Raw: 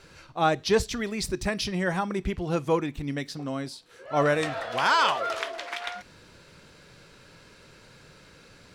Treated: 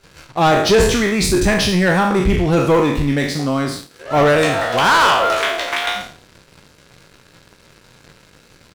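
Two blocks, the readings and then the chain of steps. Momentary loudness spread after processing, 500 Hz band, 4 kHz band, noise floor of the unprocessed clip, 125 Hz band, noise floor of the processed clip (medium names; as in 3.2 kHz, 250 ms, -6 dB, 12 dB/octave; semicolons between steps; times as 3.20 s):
9 LU, +11.5 dB, +11.5 dB, -54 dBFS, +13.5 dB, -50 dBFS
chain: spectral sustain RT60 0.62 s; dynamic bell 5.1 kHz, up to -4 dB, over -48 dBFS, Q 3.5; waveshaping leveller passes 3; bass shelf 410 Hz +3 dB; echo from a far wall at 31 m, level -30 dB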